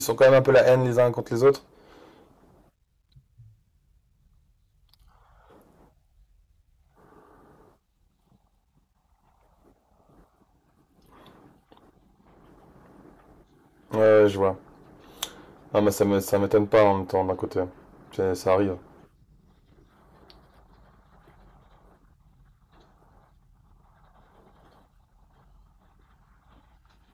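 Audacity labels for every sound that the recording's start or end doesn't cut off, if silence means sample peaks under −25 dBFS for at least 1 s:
13.930000	18.740000	sound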